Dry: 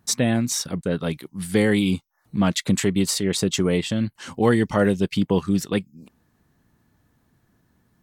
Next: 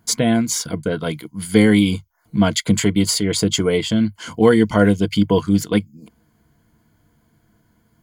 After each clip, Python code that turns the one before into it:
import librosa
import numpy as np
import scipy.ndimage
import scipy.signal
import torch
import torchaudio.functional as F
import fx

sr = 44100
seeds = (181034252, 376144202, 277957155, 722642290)

y = fx.ripple_eq(x, sr, per_octave=1.8, db=10)
y = y * 10.0 ** (3.0 / 20.0)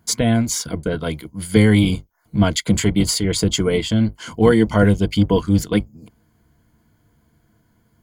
y = fx.octave_divider(x, sr, octaves=1, level_db=-5.0)
y = y * 10.0 ** (-1.0 / 20.0)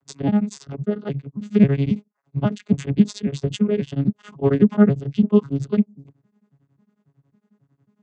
y = fx.vocoder_arp(x, sr, chord='bare fifth', root=49, every_ms=271)
y = y * np.abs(np.cos(np.pi * 11.0 * np.arange(len(y)) / sr))
y = y * 10.0 ** (2.0 / 20.0)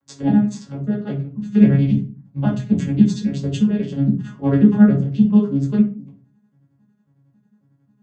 y = fx.room_shoebox(x, sr, seeds[0], volume_m3=200.0, walls='furnished', distance_m=2.2)
y = y * 10.0 ** (-4.5 / 20.0)